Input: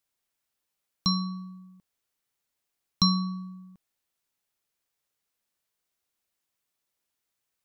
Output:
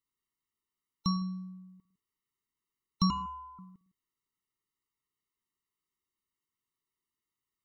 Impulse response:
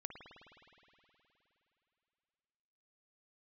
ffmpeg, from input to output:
-filter_complex "[0:a]asettb=1/sr,asplit=3[link_01][link_02][link_03];[link_01]atrim=end=3.104[link_04];[link_02]atrim=start=3.1:end=3.59,asetpts=PTS-STARTPTS,afade=type=in:duration=0.004:curve=qsin,afade=type=out:start_time=0.486:duration=0.004:curve=qsin,aeval=exprs='val(0)*sin(2*PI*1200*n/s)':channel_layout=same[link_05];[link_03]atrim=start=3.586[link_06];[link_04][link_05]acrossfade=duration=0.004:curve1=hsin:curve2=qsin[link_07];[link_07][link_06]acrossfade=duration=0.004:curve1=qsin:curve2=hsin,asplit=2[link_08][link_09];[1:a]atrim=start_sample=2205,afade=type=out:start_time=0.22:duration=0.01,atrim=end_sample=10143,lowpass=3100[link_10];[link_09][link_10]afir=irnorm=-1:irlink=0,volume=0.5dB[link_11];[link_08][link_11]amix=inputs=2:normalize=0,afftfilt=real='re*eq(mod(floor(b*sr/1024/450),2),0)':imag='im*eq(mod(floor(b*sr/1024/450),2),0)':win_size=1024:overlap=0.75,volume=-6.5dB"

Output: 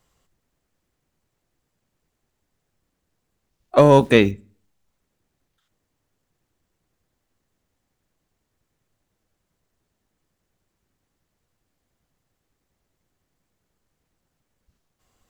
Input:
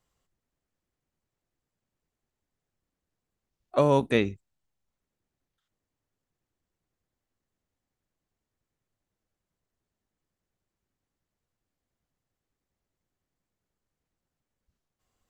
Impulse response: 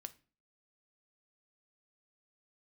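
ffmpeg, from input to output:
-filter_complex "[0:a]acontrast=87,asplit=2[link_01][link_02];[1:a]atrim=start_sample=2205,asetrate=35721,aresample=44100[link_03];[link_02][link_03]afir=irnorm=-1:irlink=0,volume=-7dB[link_04];[link_01][link_04]amix=inputs=2:normalize=0,asettb=1/sr,asplit=3[link_05][link_06][link_07];[link_05]atrim=end=3.784[link_08];[link_06]atrim=start=3.78:end=4.31,asetpts=PTS-STARTPTS,afade=type=in:duration=0.004:curve=qsin,afade=type=out:start_time=0.526:duration=0.004:curve=qsin,acrusher=bits=9:dc=4:mix=0:aa=0.000001[link_09];[link_07]atrim=start=4.306[link_10];[link_08][link_09]acrossfade=duration=0.004:curve1=hsin:curve2=qsin[link_11];[link_11][link_10]acrossfade=duration=0.004:curve1=qsin:curve2=hsin,volume=1dB"

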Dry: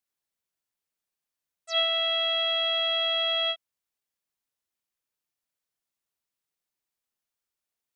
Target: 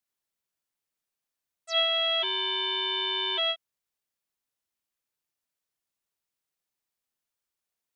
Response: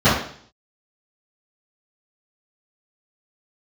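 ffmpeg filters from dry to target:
-filter_complex "[0:a]asplit=3[link_01][link_02][link_03];[link_01]afade=type=out:start_time=2.22:duration=0.02[link_04];[link_02]aeval=exprs='val(0)*sin(2*PI*280*n/s)':channel_layout=same,afade=type=in:start_time=2.22:duration=0.02,afade=type=out:start_time=3.37:duration=0.02[link_05];[link_03]afade=type=in:start_time=3.37:duration=0.02[link_06];[link_04][link_05][link_06]amix=inputs=3:normalize=0"

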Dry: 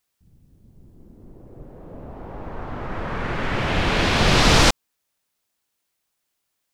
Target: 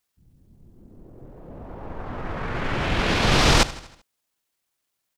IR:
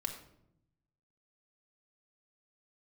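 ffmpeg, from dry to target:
-af "aecho=1:1:102|204|306|408|510:0.133|0.0707|0.0375|0.0199|0.0105,atempo=1.3,volume=-1.5dB"

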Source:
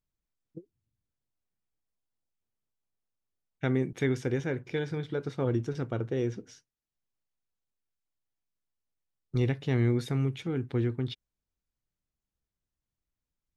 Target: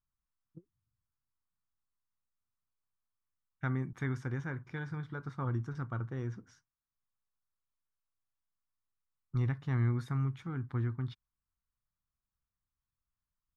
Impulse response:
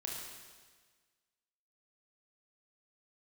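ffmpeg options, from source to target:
-af "firequalizer=gain_entry='entry(110,0);entry(450,-15);entry(1100,6);entry(2600,-13);entry(5000,-10)':delay=0.05:min_phase=1,volume=-2dB"

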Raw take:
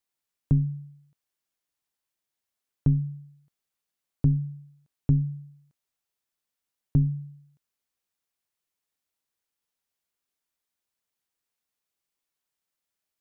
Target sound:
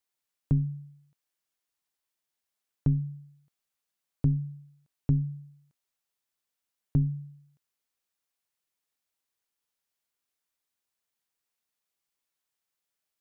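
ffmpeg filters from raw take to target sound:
ffmpeg -i in.wav -af "lowshelf=frequency=420:gain=-3.5" out.wav

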